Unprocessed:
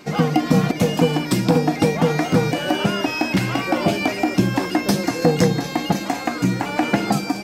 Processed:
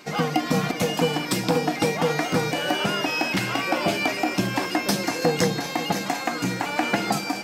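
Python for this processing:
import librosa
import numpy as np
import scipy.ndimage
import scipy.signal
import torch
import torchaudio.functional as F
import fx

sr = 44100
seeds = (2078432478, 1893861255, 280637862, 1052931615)

p1 = fx.low_shelf(x, sr, hz=450.0, db=-9.5)
y = p1 + fx.echo_feedback(p1, sr, ms=539, feedback_pct=58, wet_db=-14.0, dry=0)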